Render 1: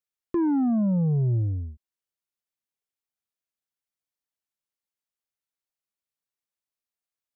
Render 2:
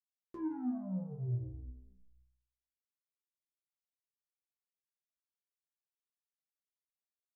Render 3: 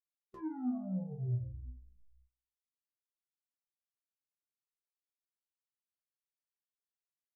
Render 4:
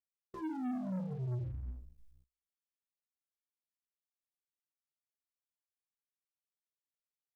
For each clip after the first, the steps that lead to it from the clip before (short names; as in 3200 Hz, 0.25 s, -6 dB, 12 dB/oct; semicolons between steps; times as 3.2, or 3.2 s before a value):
frequency-shifting echo 0.167 s, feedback 41%, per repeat -41 Hz, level -10.5 dB; gate -58 dBFS, range -9 dB; metallic resonator 62 Hz, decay 0.68 s, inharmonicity 0.002; gain -4.5 dB
spectral noise reduction 16 dB; gain +1 dB
sample leveller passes 3; gain -6 dB